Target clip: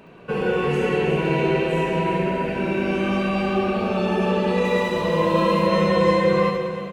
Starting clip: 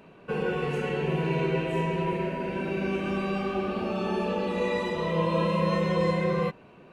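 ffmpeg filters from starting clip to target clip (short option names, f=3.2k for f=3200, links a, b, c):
-filter_complex "[0:a]asplit=2[a][b];[b]aecho=0:1:70|182|361.2|647.9|1107:0.631|0.398|0.251|0.158|0.1[c];[a][c]amix=inputs=2:normalize=0,asettb=1/sr,asplit=3[d][e][f];[d]atrim=end=4.644[g];[e]atrim=start=4.64:end=5.67,asetpts=PTS-STARTPTS,afade=t=in:d=0.004:c=qsin,afade=t=out:st=1.026:d=0.004:c=qsin,aeval=exprs='sgn(val(0))*max(abs(val(0))-0.00501,0)':c=same[h];[f]atrim=start=5.666[i];[g][h]acrossfade=d=0.004:c1=hsin:c2=qsin[j];[j][i]acrossfade=d=0.004:c1=qsin:c2=hsin,asplit=2[k][l];[l]aecho=0:1:318:0.224[m];[k][m]amix=inputs=2:normalize=0,volume=5dB"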